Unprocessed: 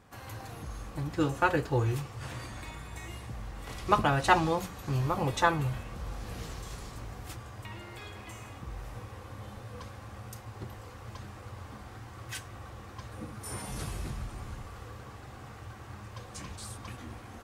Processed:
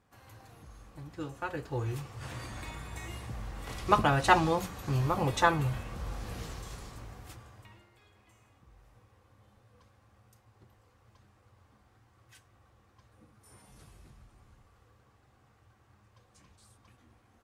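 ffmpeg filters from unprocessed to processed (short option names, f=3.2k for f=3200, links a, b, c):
-af "volume=0.5dB,afade=t=in:st=1.47:d=1.16:silence=0.266073,afade=t=out:st=6.16:d=1.25:silence=0.421697,afade=t=out:st=7.41:d=0.49:silence=0.266073"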